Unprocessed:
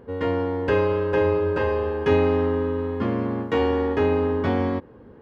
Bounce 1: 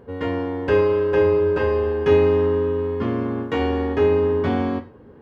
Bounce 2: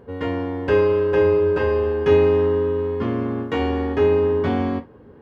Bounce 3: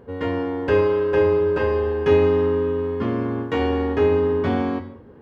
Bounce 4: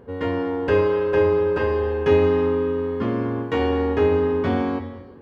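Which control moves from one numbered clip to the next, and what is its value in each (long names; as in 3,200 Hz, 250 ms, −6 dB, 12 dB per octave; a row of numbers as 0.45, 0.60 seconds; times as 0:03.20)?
reverb whose tail is shaped and stops, gate: 140, 90, 240, 470 milliseconds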